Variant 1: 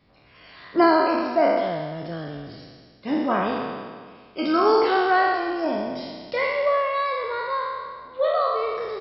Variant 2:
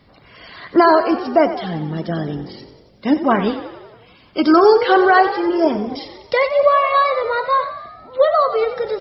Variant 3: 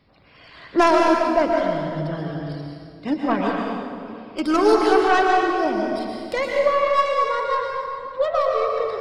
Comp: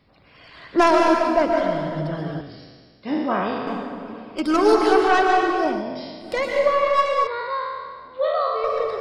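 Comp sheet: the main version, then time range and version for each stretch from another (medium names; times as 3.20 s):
3
2.41–3.67 s: from 1
5.79–6.26 s: from 1, crossfade 0.16 s
7.27–8.64 s: from 1
not used: 2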